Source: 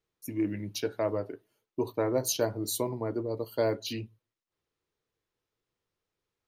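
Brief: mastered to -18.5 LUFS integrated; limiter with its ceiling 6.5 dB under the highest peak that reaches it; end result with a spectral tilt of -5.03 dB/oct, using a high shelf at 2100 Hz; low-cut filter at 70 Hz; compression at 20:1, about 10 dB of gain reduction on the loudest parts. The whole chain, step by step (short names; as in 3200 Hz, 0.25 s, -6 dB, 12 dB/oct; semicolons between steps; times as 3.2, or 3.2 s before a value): HPF 70 Hz; high shelf 2100 Hz -6.5 dB; compressor 20:1, threshold -33 dBFS; gain +23 dB; limiter -7 dBFS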